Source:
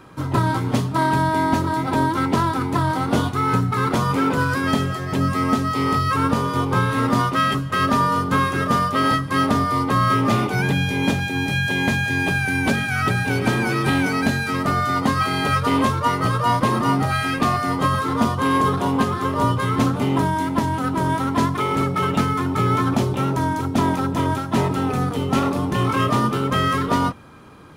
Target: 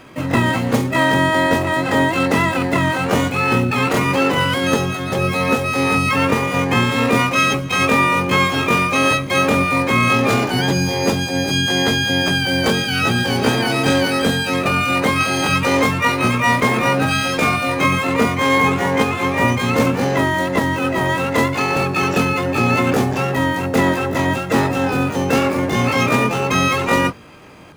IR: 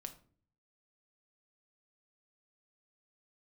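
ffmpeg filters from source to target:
-filter_complex "[0:a]asplit=2[link_01][link_02];[link_02]asetrate=88200,aresample=44100,atempo=0.5,volume=0dB[link_03];[link_01][link_03]amix=inputs=2:normalize=0"

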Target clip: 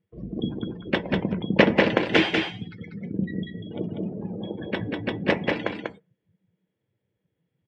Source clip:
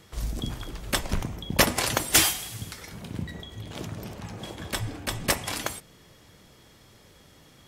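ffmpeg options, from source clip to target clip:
ffmpeg -i in.wav -af "afftdn=noise_reduction=33:noise_floor=-37,highpass=160,equalizer=frequency=190:width_type=q:width=4:gain=9,equalizer=frequency=330:width_type=q:width=4:gain=5,equalizer=frequency=470:width_type=q:width=4:gain=7,equalizer=frequency=750:width_type=q:width=4:gain=-3,equalizer=frequency=1200:width_type=q:width=4:gain=-10,lowpass=frequency=2900:width=0.5412,lowpass=frequency=2900:width=1.3066,aecho=1:1:193:0.631,volume=4dB" out.wav

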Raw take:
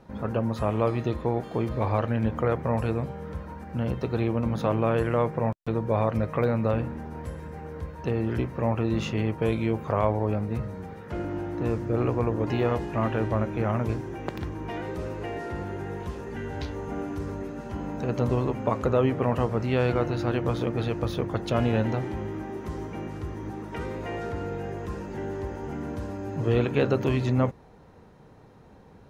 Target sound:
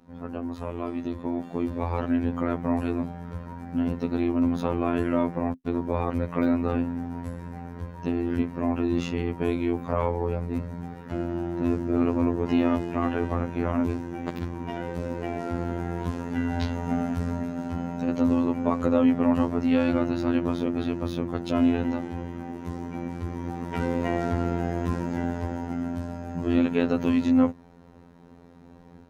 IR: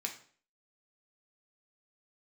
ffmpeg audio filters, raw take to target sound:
-af "equalizer=frequency=230:width=4.7:gain=14,dynaudnorm=framelen=1000:gausssize=3:maxgain=13.5dB,afftfilt=real='hypot(re,im)*cos(PI*b)':imag='0':win_size=2048:overlap=0.75,volume=-4.5dB"

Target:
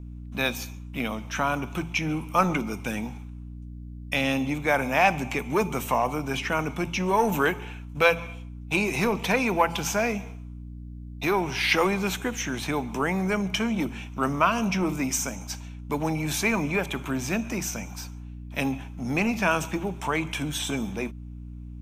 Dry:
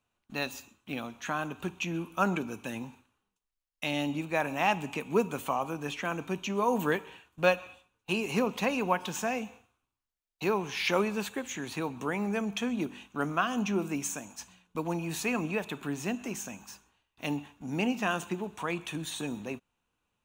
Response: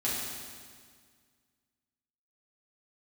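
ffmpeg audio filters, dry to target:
-filter_complex "[0:a]bandreject=frequency=60:width_type=h:width=6,bandreject=frequency=120:width_type=h:width=6,bandreject=frequency=180:width_type=h:width=6,asetrate=40925,aresample=44100,aeval=exprs='val(0)+0.00562*(sin(2*PI*60*n/s)+sin(2*PI*2*60*n/s)/2+sin(2*PI*3*60*n/s)/3+sin(2*PI*4*60*n/s)/4+sin(2*PI*5*60*n/s)/5)':channel_layout=same,acrossover=split=720[link_01][link_02];[link_01]asoftclip=type=tanh:threshold=-29dB[link_03];[link_03][link_02]amix=inputs=2:normalize=0,volume=7.5dB"

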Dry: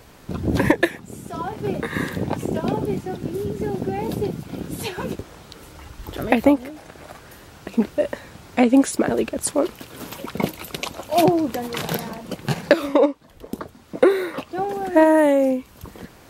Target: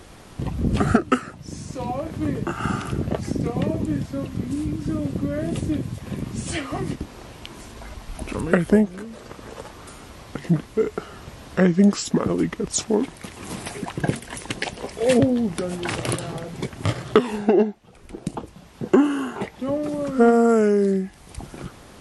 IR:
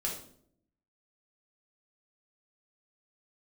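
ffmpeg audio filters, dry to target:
-filter_complex "[0:a]asplit=2[link_01][link_02];[link_02]acompressor=threshold=-30dB:ratio=6,volume=-1.5dB[link_03];[link_01][link_03]amix=inputs=2:normalize=0,asetrate=32667,aresample=44100,volume=-2.5dB"

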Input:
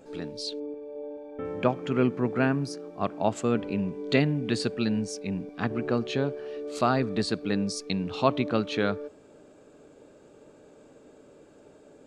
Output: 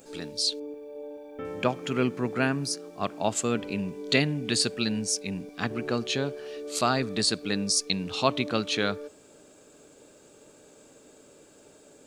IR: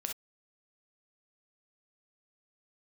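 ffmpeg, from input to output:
-af "crystalizer=i=5:c=0,volume=-2.5dB"

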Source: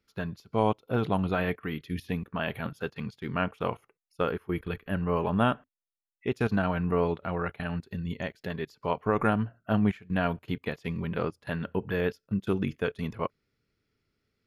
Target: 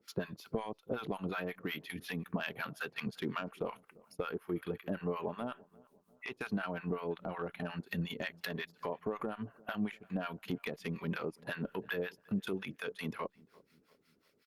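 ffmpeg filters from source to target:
ffmpeg -i in.wav -filter_complex "[0:a]highpass=210,highshelf=frequency=2200:gain=5.5,asplit=2[link_01][link_02];[link_02]alimiter=limit=-16.5dB:level=0:latency=1:release=71,volume=0.5dB[link_03];[link_01][link_03]amix=inputs=2:normalize=0,acompressor=threshold=-33dB:ratio=12,asoftclip=type=tanh:threshold=-25.5dB,acrossover=split=820[link_04][link_05];[link_04]aeval=exprs='val(0)*(1-1/2+1/2*cos(2*PI*5.5*n/s))':channel_layout=same[link_06];[link_05]aeval=exprs='val(0)*(1-1/2-1/2*cos(2*PI*5.5*n/s))':channel_layout=same[link_07];[link_06][link_07]amix=inputs=2:normalize=0,asplit=2[link_08][link_09];[link_09]adelay=346,lowpass=frequency=1300:poles=1,volume=-23dB,asplit=2[link_10][link_11];[link_11]adelay=346,lowpass=frequency=1300:poles=1,volume=0.52,asplit=2[link_12][link_13];[link_13]adelay=346,lowpass=frequency=1300:poles=1,volume=0.52[link_14];[link_10][link_12][link_14]amix=inputs=3:normalize=0[link_15];[link_08][link_15]amix=inputs=2:normalize=0,volume=5dB" -ar 48000 -c:a libopus -b:a 48k out.opus

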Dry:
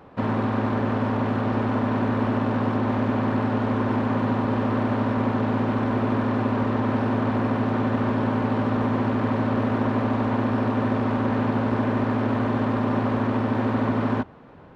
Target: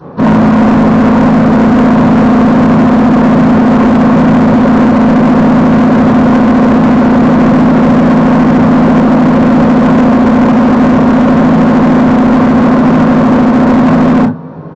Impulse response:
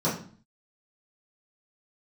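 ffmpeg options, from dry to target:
-filter_complex "[0:a]aecho=1:1:20|37|62:0.299|0.133|0.133[link_01];[1:a]atrim=start_sample=2205,afade=type=out:start_time=0.15:duration=0.01,atrim=end_sample=7056[link_02];[link_01][link_02]afir=irnorm=-1:irlink=0,aresample=16000,asoftclip=type=hard:threshold=-7.5dB,aresample=44100,volume=3.5dB"

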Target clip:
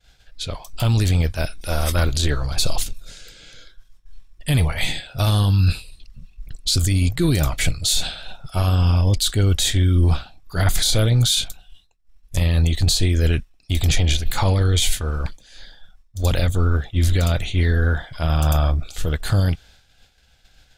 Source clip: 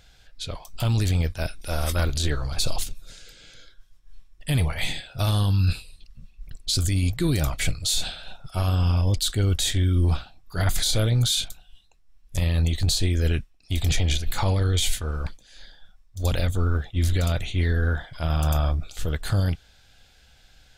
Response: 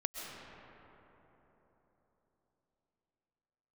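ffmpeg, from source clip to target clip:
-af "atempo=1,agate=range=-33dB:threshold=-48dB:ratio=3:detection=peak,volume=4.5dB"

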